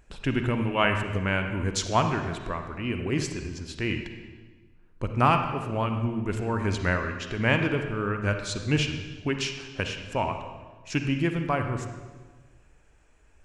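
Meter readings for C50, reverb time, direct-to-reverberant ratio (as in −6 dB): 6.0 dB, 1.4 s, 5.5 dB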